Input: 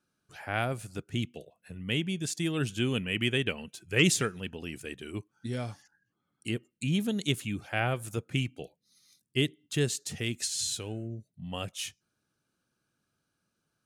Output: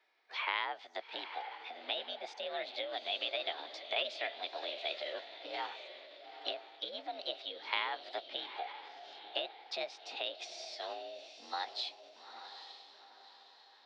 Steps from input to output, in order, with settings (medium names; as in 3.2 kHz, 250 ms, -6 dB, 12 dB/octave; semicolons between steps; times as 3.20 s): compression 6:1, threshold -40 dBFS, peak gain reduction 20 dB; on a send: echo that smears into a reverb 853 ms, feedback 42%, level -10 dB; on the sum: mistuned SSB +60 Hz 400–3300 Hz; formant shift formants +5 st; trim +9 dB